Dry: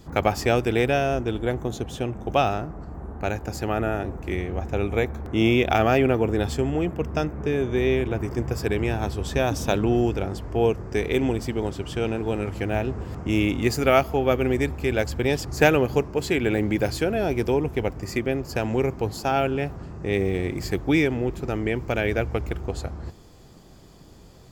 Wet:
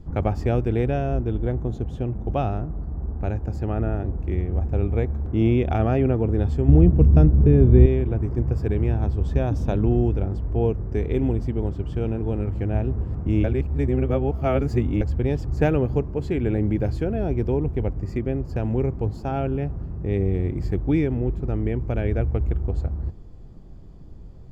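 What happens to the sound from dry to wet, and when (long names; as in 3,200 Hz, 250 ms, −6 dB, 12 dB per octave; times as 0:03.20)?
0:06.68–0:07.86: low-shelf EQ 390 Hz +12 dB
0:13.44–0:15.01: reverse
whole clip: spectral tilt −4 dB per octave; level −7.5 dB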